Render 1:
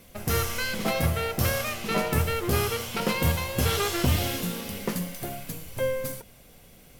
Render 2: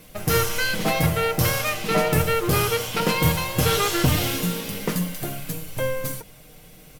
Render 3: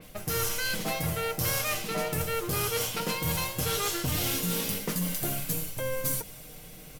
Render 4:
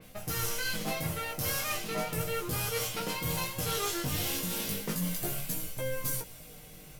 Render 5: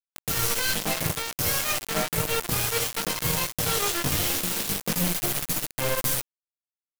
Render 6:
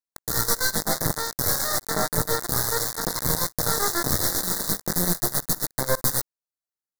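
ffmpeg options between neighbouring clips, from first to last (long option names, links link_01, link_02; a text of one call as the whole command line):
ffmpeg -i in.wav -af "aecho=1:1:6.5:0.51,volume=4dB" out.wav
ffmpeg -i in.wav -af "areverse,acompressor=threshold=-28dB:ratio=6,areverse,adynamicequalizer=threshold=0.00282:dfrequency=4200:dqfactor=0.7:tfrequency=4200:tqfactor=0.7:attack=5:release=100:ratio=0.375:range=3:mode=boostabove:tftype=highshelf" out.wav
ffmpeg -i in.wav -af "flanger=delay=15.5:depth=5.4:speed=0.35" out.wav
ffmpeg -i in.wav -af "acrusher=bits=4:mix=0:aa=0.000001,volume=5.5dB" out.wav
ffmpeg -i in.wav -af "aeval=exprs='0.251*(cos(1*acos(clip(val(0)/0.251,-1,1)))-cos(1*PI/2))+0.0501*(cos(6*acos(clip(val(0)/0.251,-1,1)))-cos(6*PI/2))':channel_layout=same,asuperstop=centerf=2700:order=8:qfactor=1.5" out.wav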